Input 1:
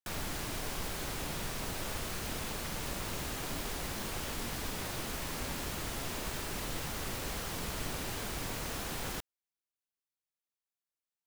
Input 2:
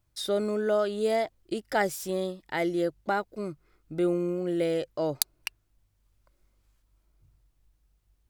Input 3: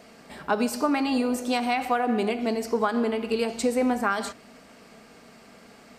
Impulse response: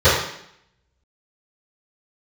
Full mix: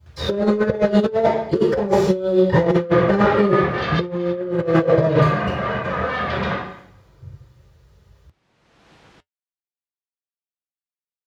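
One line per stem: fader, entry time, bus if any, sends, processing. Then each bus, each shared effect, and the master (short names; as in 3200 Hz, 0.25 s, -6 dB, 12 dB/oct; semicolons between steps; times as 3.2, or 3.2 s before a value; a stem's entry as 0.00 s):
-10.5 dB, 0.00 s, no send, LPF 4000 Hz 12 dB/oct; auto duck -22 dB, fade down 0.40 s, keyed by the second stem
+1.5 dB, 0.00 s, send -5.5 dB, slew limiter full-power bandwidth 19 Hz
-7.0 dB, 2.25 s, send -10 dB, Schmitt trigger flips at -27 dBFS; double band-pass 410 Hz, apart 1.4 oct; sine folder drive 12 dB, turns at -28 dBFS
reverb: on, RT60 0.70 s, pre-delay 3 ms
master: HPF 73 Hz; negative-ratio compressor -12 dBFS, ratio -0.5; flange 0.5 Hz, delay 4.7 ms, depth 1.6 ms, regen -66%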